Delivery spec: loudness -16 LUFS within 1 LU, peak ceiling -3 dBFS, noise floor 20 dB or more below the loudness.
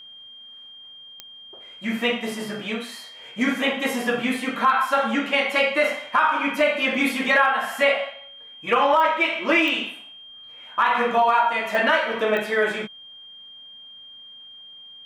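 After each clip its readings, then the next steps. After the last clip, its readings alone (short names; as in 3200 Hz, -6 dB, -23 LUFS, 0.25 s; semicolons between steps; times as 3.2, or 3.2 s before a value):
clicks 5; steady tone 3200 Hz; tone level -41 dBFS; loudness -21.5 LUFS; peak -6.0 dBFS; loudness target -16.0 LUFS
-> de-click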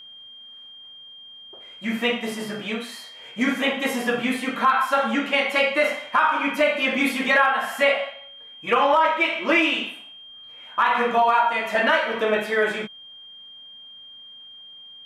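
clicks 0; steady tone 3200 Hz; tone level -41 dBFS
-> notch 3200 Hz, Q 30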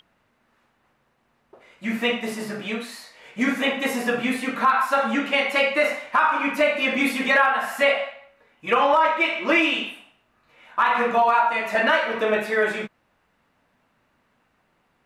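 steady tone none; loudness -21.5 LUFS; peak -6.0 dBFS; loudness target -16.0 LUFS
-> gain +5.5 dB; limiter -3 dBFS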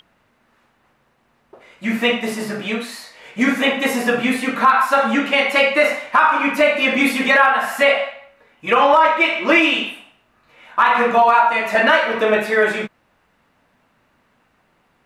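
loudness -16.0 LUFS; peak -3.0 dBFS; noise floor -62 dBFS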